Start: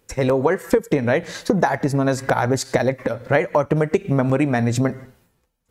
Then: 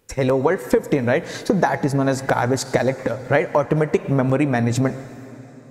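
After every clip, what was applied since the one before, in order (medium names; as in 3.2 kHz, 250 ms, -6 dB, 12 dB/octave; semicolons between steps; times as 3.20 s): plate-style reverb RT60 4.2 s, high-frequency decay 0.8×, pre-delay 90 ms, DRR 15.5 dB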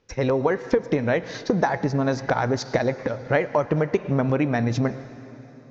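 steep low-pass 6.3 kHz 72 dB/octave; trim -3.5 dB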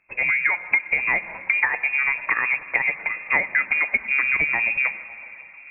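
frequency inversion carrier 2.6 kHz; repeats whose band climbs or falls 137 ms, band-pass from 160 Hz, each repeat 0.7 oct, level -11.5 dB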